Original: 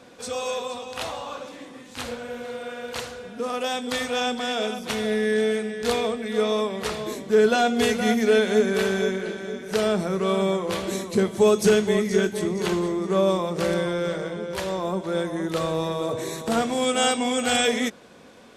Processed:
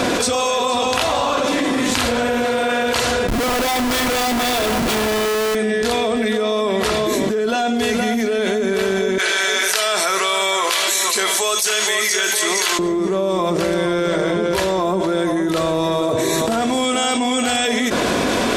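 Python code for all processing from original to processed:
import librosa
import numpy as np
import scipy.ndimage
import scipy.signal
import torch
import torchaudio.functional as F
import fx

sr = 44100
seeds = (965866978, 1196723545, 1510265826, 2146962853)

y = fx.chain(x, sr, fx.quant_companded(bits=8),
    fx.schmitt(flips_db=-36.5), at=(3.28, 5.55))
y = fx.chain(y, sr, fx.highpass(hz=1100.0, slope=12),
    fx.high_shelf(hz=3600.0, db=6.5), at=(9.18, 12.79))
y = y + 0.32 * np.pad(y, (int(3.0 * sr / 1000.0), 0))[:len(y)]
y = fx.env_flatten(y, sr, amount_pct=100)
y = y * 10.0 ** (-4.0 / 20.0)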